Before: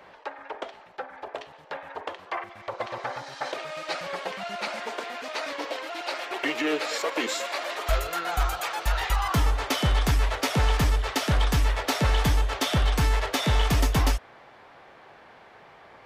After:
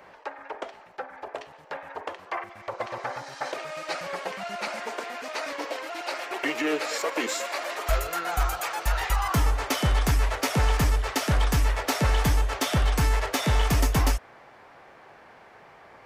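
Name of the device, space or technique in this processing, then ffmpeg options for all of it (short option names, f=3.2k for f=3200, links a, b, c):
exciter from parts: -filter_complex "[0:a]asplit=2[a][b];[b]highpass=f=3.3k:w=0.5412,highpass=f=3.3k:w=1.3066,asoftclip=type=tanh:threshold=-24dB,volume=-6dB[c];[a][c]amix=inputs=2:normalize=0"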